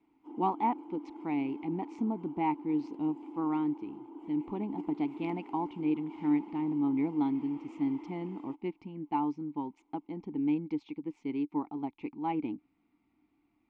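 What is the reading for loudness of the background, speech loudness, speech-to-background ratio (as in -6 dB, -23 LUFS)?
-46.5 LUFS, -34.0 LUFS, 12.5 dB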